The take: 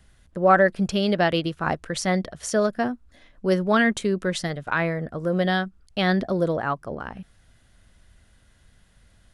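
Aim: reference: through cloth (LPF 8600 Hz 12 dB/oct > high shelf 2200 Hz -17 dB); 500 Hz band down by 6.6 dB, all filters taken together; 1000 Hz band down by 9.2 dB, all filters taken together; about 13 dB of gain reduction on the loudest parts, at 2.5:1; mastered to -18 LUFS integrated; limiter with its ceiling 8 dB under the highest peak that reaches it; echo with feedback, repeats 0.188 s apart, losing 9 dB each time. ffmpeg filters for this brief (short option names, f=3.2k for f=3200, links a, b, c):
-af "equalizer=f=500:t=o:g=-5,equalizer=f=1k:t=o:g=-7.5,acompressor=threshold=-38dB:ratio=2.5,alimiter=level_in=4.5dB:limit=-24dB:level=0:latency=1,volume=-4.5dB,lowpass=8.6k,highshelf=f=2.2k:g=-17,aecho=1:1:188|376|564|752:0.355|0.124|0.0435|0.0152,volume=22dB"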